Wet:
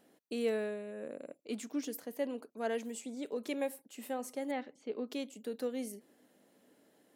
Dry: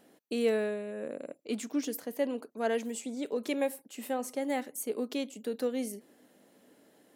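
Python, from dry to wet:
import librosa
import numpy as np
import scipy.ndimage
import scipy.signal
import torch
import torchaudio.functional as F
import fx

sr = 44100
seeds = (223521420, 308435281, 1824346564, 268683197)

y = fx.lowpass(x, sr, hz=4300.0, slope=24, at=(4.51, 5.08))
y = F.gain(torch.from_numpy(y), -5.0).numpy()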